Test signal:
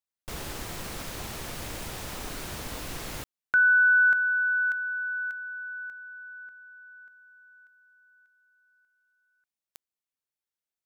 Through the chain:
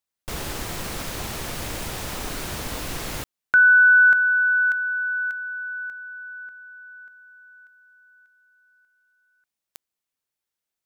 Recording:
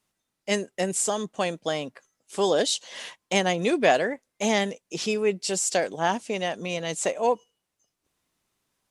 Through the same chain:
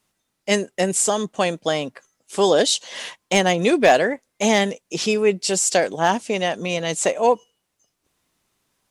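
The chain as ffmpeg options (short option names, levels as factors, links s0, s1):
-af "asoftclip=type=hard:threshold=0.266,volume=2"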